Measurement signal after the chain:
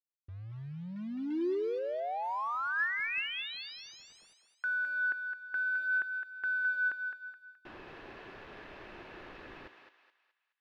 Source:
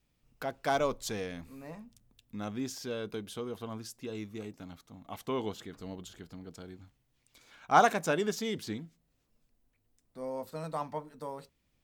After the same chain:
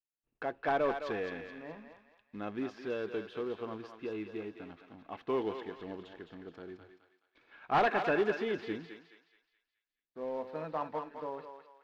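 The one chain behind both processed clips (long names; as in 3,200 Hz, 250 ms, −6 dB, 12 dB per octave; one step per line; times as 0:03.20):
downward expander −57 dBFS
high-shelf EQ 2,100 Hz −2 dB
hollow resonant body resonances 350/1,700/2,600 Hz, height 8 dB, ringing for 20 ms
in parallel at −4 dB: wrap-around overflow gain 15.5 dB
on the sum: mid-hump overdrive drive 12 dB, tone 4,000 Hz, clips at −7 dBFS
floating-point word with a short mantissa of 2 bits
pitch vibrato 0.37 Hz 13 cents
high-frequency loss of the air 320 metres
on a send: feedback echo with a high-pass in the loop 212 ms, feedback 43%, high-pass 740 Hz, level −5.5 dB
on the sum: level −8.5 dB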